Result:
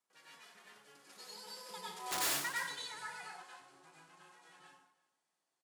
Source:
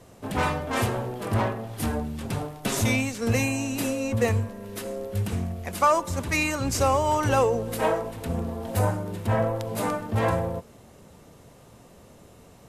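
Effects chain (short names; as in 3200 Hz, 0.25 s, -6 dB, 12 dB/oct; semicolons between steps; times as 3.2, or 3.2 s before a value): CVSD 32 kbps; Doppler pass-by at 4.82, 25 m/s, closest 2 m; feedback echo 0.758 s, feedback 17%, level -22 dB; wrapped overs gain 28.5 dB; tempo 1.3×; HPF 680 Hz 6 dB/oct; speed mistake 45 rpm record played at 78 rpm; high shelf 3800 Hz +7 dB; plate-style reverb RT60 0.56 s, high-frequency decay 0.95×, pre-delay 85 ms, DRR -5 dB; hard clip -30 dBFS, distortion -10 dB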